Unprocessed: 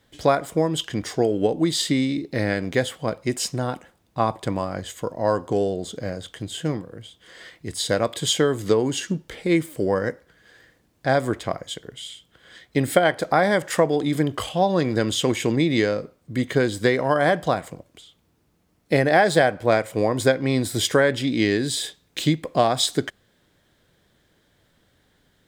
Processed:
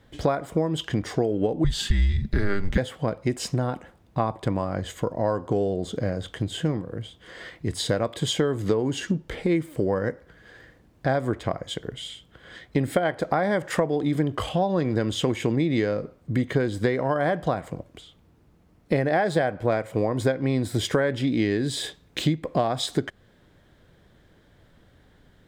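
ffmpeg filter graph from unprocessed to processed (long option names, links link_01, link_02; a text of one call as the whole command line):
ffmpeg -i in.wav -filter_complex "[0:a]asettb=1/sr,asplit=3[link_01][link_02][link_03];[link_01]atrim=end=1.644[link_04];[link_02]atrim=start=1.64:end=2.78,asetpts=PTS-STARTPTS,afade=type=in:duration=0.004:curve=qsin,afade=type=out:start_time=1.136:duration=0.004:curve=qsin,aecho=1:1:5:0.44,atrim=end_sample=50274,afreqshift=-200[link_05];[link_03]atrim=start=2.776[link_06];[link_04][link_05]acrossfade=duration=0.004:curve1=hsin:curve2=qsin[link_07];[link_07][link_06]acrossfade=duration=0.004:curve1=qsin:curve2=hsin,highshelf=frequency=3100:gain=-10.5,acompressor=threshold=-30dB:ratio=2.5,lowshelf=frequency=96:gain=6.5,volume=5.5dB" out.wav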